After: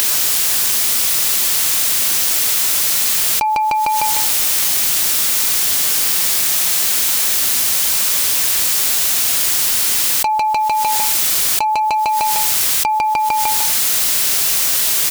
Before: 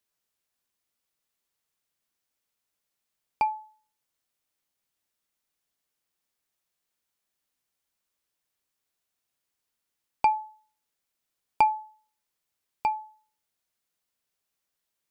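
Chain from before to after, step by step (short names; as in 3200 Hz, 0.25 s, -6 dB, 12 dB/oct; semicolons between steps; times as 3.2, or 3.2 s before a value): high shelf 2200 Hz +9.5 dB; in parallel at +2.5 dB: upward compressor, threshold -24 dBFS; on the sum: hard clip -8.5 dBFS, distortion -13 dB; on a send: feedback echo 0.151 s, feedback 43%, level -9 dB; on the sum: fast leveller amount 100%; gain -5.5 dB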